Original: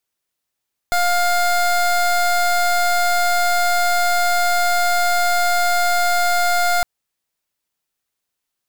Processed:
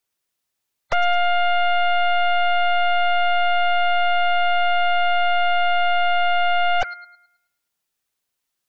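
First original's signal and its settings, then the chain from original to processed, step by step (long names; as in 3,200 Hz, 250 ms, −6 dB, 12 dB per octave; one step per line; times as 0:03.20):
pulse wave 705 Hz, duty 24% −16.5 dBFS 5.91 s
gate on every frequency bin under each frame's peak −15 dB strong
on a send: delay with a high-pass on its return 107 ms, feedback 38%, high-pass 1,700 Hz, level −6 dB
on the sum: highs frequency-modulated by the lows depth 0.86 ms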